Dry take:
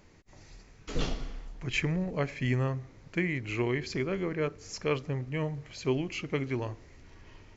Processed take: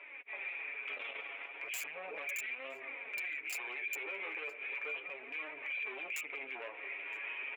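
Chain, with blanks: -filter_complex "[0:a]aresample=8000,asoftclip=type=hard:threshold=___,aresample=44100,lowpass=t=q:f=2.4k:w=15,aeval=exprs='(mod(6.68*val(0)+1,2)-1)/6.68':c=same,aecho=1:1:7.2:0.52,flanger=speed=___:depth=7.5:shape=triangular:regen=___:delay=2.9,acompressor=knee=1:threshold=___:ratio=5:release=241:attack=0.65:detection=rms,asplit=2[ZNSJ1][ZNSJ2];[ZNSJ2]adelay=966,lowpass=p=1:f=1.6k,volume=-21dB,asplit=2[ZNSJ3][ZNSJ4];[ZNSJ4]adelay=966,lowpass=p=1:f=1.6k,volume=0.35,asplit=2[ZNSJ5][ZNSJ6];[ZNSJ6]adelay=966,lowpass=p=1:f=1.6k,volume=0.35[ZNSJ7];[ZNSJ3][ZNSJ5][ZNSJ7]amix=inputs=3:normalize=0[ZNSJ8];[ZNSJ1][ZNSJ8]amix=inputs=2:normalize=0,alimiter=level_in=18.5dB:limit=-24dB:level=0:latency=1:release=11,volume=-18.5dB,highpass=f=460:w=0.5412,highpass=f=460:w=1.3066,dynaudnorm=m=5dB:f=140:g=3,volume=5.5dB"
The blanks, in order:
-34.5dB, 0.36, -3, -38dB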